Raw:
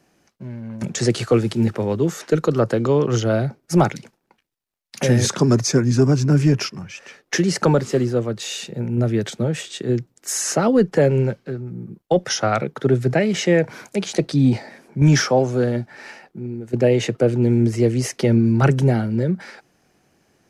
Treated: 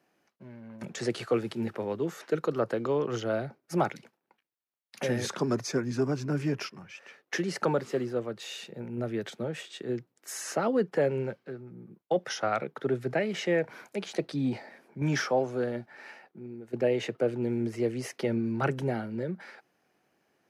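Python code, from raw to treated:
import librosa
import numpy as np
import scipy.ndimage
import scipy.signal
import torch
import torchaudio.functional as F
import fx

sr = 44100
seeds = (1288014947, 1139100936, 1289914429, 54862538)

y = fx.highpass(x, sr, hz=400.0, slope=6)
y = fx.peak_eq(y, sr, hz=7100.0, db=-9.0, octaves=1.5)
y = y * librosa.db_to_amplitude(-7.0)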